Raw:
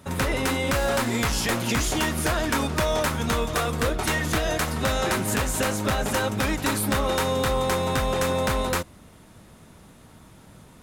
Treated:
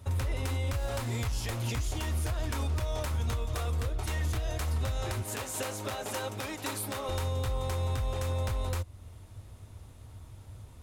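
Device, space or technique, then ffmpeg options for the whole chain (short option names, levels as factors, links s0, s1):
car stereo with a boomy subwoofer: -filter_complex "[0:a]asettb=1/sr,asplit=3[s0][s1][s2];[s0]atrim=end=5.224[s3];[s1]atrim=start=5.22:end=7.09,asetpts=PTS-STARTPTS,afade=t=in:d=0.004:c=qsin,afade=t=out:st=1.866:d=0.004:c=qsin,highpass=260[s4];[s2]atrim=start=7.086[s5];[s3][s4]acrossfade=d=0.004:c1=hsin:c2=qsin[s6];[s6][s5]acrossfade=d=0.004:c1=qsin:c2=hsin,lowshelf=f=130:t=q:w=3:g=9,equalizer=f=1600:w=1.8:g=-4.5,alimiter=limit=0.133:level=0:latency=1:release=302,volume=0.501"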